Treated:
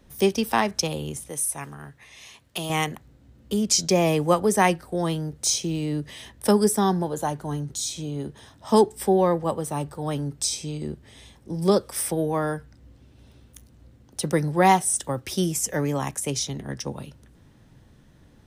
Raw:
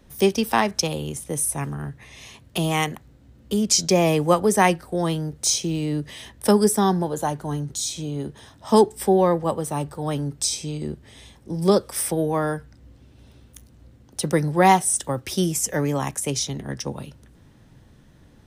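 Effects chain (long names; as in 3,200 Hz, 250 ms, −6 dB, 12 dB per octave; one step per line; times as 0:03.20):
0:01.29–0:02.70: low-shelf EQ 460 Hz −10.5 dB
level −2 dB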